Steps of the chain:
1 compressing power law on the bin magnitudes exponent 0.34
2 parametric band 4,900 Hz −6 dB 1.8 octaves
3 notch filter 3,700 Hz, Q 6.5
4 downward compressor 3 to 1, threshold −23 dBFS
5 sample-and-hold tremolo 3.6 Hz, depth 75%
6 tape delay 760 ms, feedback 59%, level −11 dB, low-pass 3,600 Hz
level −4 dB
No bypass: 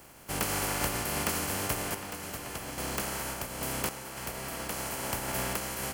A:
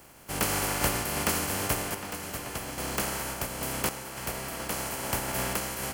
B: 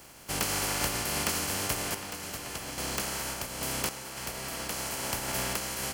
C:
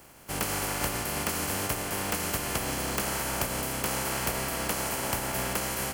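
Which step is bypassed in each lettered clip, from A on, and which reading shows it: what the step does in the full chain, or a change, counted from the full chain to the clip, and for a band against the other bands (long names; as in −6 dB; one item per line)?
4, average gain reduction 2.0 dB
2, 4 kHz band +4.5 dB
5, change in momentary loudness spread −7 LU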